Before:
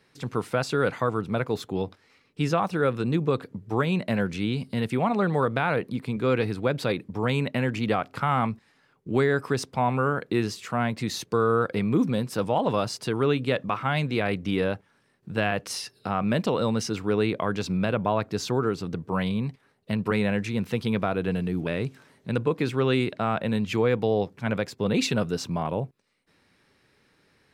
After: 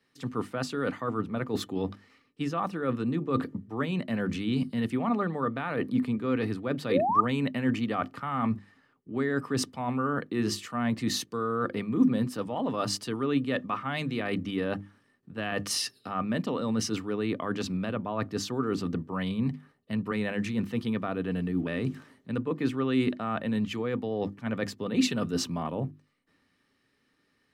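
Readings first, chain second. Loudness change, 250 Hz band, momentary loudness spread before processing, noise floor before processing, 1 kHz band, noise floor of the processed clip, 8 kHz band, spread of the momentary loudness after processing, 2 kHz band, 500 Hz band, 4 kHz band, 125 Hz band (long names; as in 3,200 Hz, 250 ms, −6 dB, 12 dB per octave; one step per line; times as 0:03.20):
−3.5 dB, −1.0 dB, 7 LU, −65 dBFS, −4.0 dB, −72 dBFS, +0.5 dB, 6 LU, −5.5 dB, −6.5 dB, −2.0 dB, −6.0 dB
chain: mains-hum notches 50/100/150/200/250/300/350 Hz
reversed playback
downward compressor 6 to 1, threshold −31 dBFS, peak gain reduction 13 dB
reversed playback
sound drawn into the spectrogram rise, 0:06.90–0:07.21, 430–1,300 Hz −29 dBFS
hollow resonant body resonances 260/1,200/1,800/3,000 Hz, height 10 dB
multiband upward and downward expander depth 40%
level +2 dB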